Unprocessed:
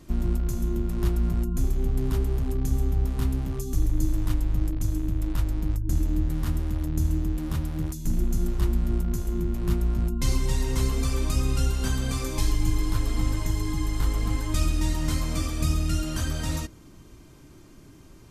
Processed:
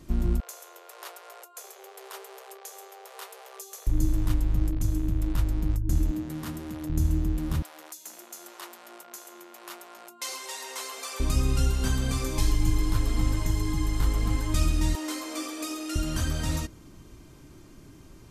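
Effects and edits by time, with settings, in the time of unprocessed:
0.4–3.87 steep high-pass 430 Hz 96 dB/oct
6.11–6.9 HPF 190 Hz
7.62–11.2 HPF 560 Hz 24 dB/oct
14.95–15.96 elliptic high-pass 290 Hz

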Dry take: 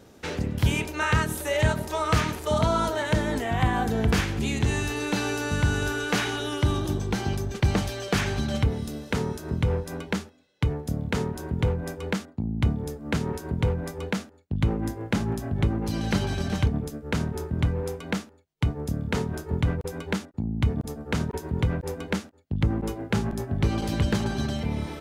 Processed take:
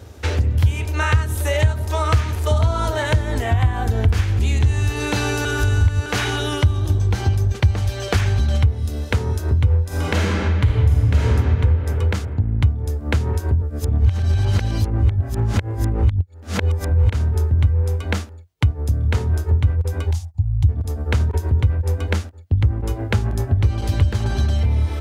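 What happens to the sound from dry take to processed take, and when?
5.45–6.06 reverse
9.87–11.28 reverb throw, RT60 2.7 s, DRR -8 dB
13.62–17.1 reverse
20.11–20.69 EQ curve 120 Hz 0 dB, 250 Hz -25 dB, 490 Hz -30 dB, 770 Hz -7 dB, 1400 Hz -24 dB, 5800 Hz -2 dB
whole clip: HPF 58 Hz; resonant low shelf 120 Hz +10.5 dB, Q 3; compressor 3:1, threshold -24 dBFS; gain +7.5 dB

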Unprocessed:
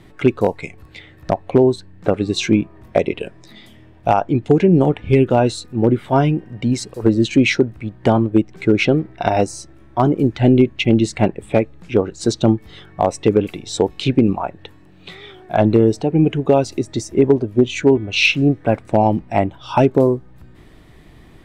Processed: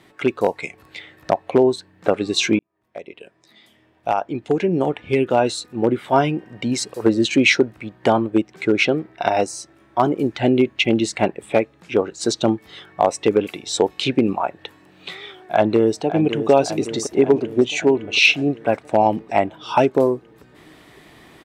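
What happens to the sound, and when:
2.59–6.72 fade in
15.53–16.5 echo throw 0.56 s, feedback 65%, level -11 dB
whole clip: HPF 500 Hz 6 dB/oct; AGC gain up to 5.5 dB

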